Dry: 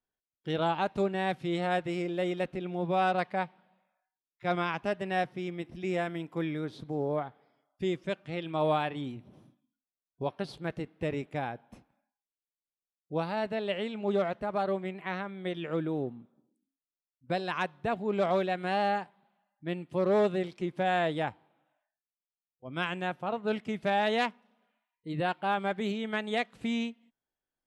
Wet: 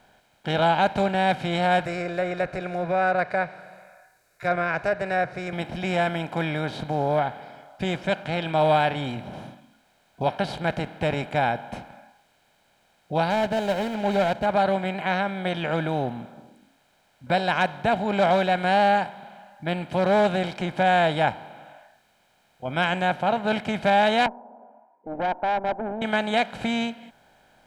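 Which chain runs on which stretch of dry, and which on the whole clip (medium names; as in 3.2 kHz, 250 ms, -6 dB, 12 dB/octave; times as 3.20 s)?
1.85–5.53 s: low-pass that closes with the level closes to 2.2 kHz, closed at -25.5 dBFS + treble shelf 5.4 kHz +11.5 dB + static phaser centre 860 Hz, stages 6
13.30–14.46 s: median filter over 25 samples + band-stop 1.2 kHz, Q 6.2
24.26–26.02 s: Chebyshev band-pass 240–950 Hz, order 4 + valve stage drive 31 dB, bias 0.5
whole clip: spectral levelling over time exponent 0.6; comb 1.3 ms, depth 54%; trim +4 dB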